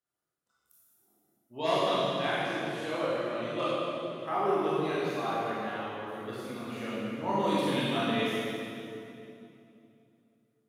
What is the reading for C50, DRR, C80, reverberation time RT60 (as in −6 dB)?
−4.0 dB, −9.5 dB, −2.0 dB, 2.8 s